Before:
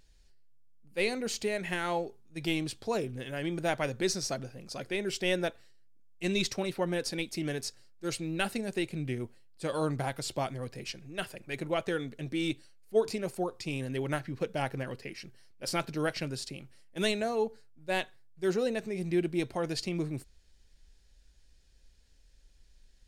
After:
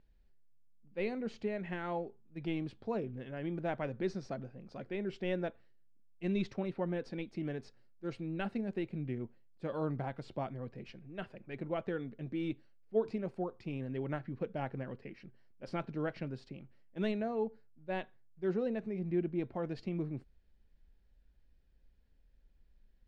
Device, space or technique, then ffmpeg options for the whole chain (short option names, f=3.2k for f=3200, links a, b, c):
phone in a pocket: -filter_complex "[0:a]lowpass=3.4k,equalizer=f=210:t=o:w=0.57:g=5,highshelf=f=2.4k:g=-12,asettb=1/sr,asplit=3[a][b][c];[a]atrim=end=18.994[d];[b]atrim=start=18.99:end=19.55,asetpts=PTS-STARTPTS,afade=t=in:d=0.004:c=qsin,afade=t=out:st=0.556:d=0.004:c=qsin,highshelf=f=5k:g=-8.5[e];[c]atrim=start=19.546[f];[d][e]acrossfade=d=0.004:c1=hsin:c2=qsin[g];[g][f]acrossfade=d=0.004:c1=qsin:c2=hsin,volume=-5dB"